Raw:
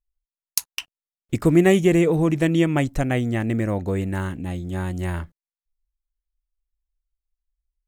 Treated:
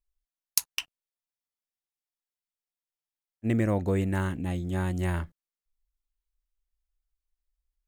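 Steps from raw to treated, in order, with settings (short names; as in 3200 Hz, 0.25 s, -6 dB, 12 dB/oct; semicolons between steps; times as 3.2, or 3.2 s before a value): spectral freeze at 1.12, 2.33 s; gain -2 dB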